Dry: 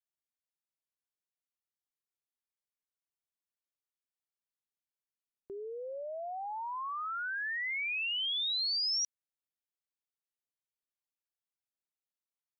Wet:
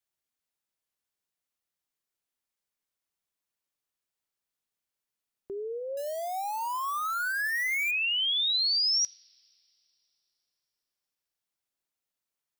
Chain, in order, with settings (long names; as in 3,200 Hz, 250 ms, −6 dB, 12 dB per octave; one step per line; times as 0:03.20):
0:05.97–0:07.91: spike at every zero crossing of −37.5 dBFS
coupled-rooms reverb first 0.43 s, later 3.2 s, from −21 dB, DRR 19.5 dB
level +6 dB